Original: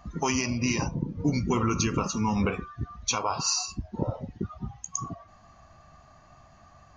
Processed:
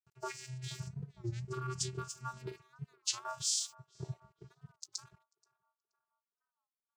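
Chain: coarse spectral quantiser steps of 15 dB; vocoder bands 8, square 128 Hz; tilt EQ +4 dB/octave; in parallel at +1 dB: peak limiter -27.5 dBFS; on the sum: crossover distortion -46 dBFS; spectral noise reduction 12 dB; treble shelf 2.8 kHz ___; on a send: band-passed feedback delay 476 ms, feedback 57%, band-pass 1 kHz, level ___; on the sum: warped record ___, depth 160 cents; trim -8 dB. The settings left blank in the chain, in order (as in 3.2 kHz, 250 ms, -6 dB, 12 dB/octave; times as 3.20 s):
+9 dB, -20 dB, 33 1/3 rpm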